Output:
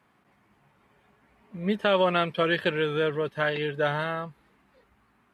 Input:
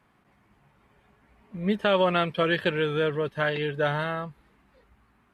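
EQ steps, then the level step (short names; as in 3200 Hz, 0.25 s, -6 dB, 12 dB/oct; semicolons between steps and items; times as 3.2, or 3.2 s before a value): HPF 130 Hz 6 dB/oct; 0.0 dB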